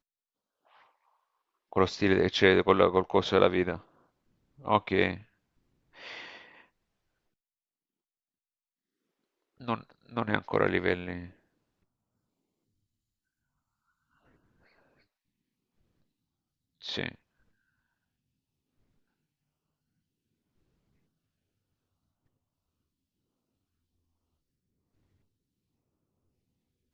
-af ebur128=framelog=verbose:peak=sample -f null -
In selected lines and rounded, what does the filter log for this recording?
Integrated loudness:
  I:         -27.4 LUFS
  Threshold: -39.9 LUFS
Loudness range:
  LRA:        22.1 LU
  Threshold: -52.3 LUFS
  LRA low:   -48.6 LUFS
  LRA high:  -26.5 LUFS
Sample peak:
  Peak:       -5.5 dBFS